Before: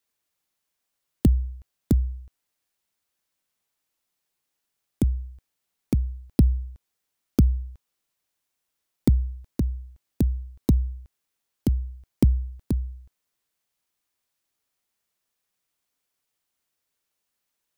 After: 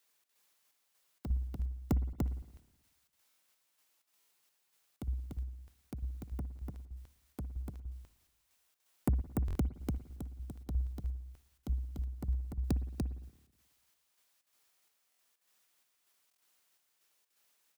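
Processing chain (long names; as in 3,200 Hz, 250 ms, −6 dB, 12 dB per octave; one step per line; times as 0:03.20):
low-shelf EQ 320 Hz −10 dB
in parallel at 0 dB: downward compressor, threshold −39 dBFS, peak gain reduction 17.5 dB
on the sum: soft clipping −23.5 dBFS, distortion −10 dB
gate pattern "xx.xxx.." 127 BPM −12 dB
on a send: single-tap delay 293 ms −3 dB
on the sum: spring reverb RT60 1.1 s, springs 55/59 ms, chirp 55 ms, DRR 15 dB
buffer that repeats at 0:03.28/0:04.19/0:09.46/0:15.10/0:16.29, samples 1,024, times 3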